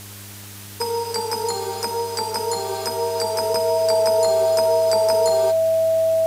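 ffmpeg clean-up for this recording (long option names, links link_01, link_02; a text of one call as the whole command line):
ffmpeg -i in.wav -af "bandreject=frequency=100.9:width_type=h:width=4,bandreject=frequency=201.8:width_type=h:width=4,bandreject=frequency=302.7:width_type=h:width=4,bandreject=frequency=403.6:width_type=h:width=4,bandreject=frequency=650:width=30,afwtdn=0.011" out.wav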